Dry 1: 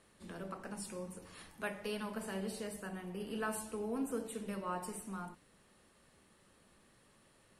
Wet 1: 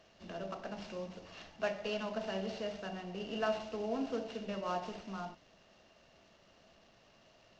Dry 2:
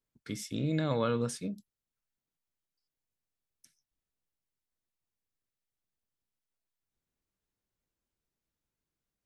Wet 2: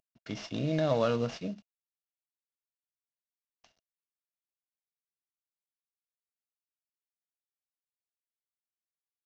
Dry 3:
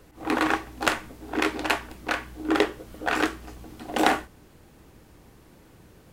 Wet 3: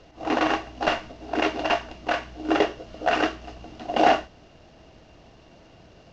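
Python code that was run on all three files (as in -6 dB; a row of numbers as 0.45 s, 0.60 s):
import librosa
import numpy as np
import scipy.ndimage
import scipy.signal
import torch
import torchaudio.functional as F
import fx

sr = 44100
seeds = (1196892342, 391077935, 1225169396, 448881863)

y = fx.cvsd(x, sr, bps=32000)
y = fx.small_body(y, sr, hz=(660.0, 2800.0), ring_ms=30, db=13)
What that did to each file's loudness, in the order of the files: +2.0 LU, +1.5 LU, +1.5 LU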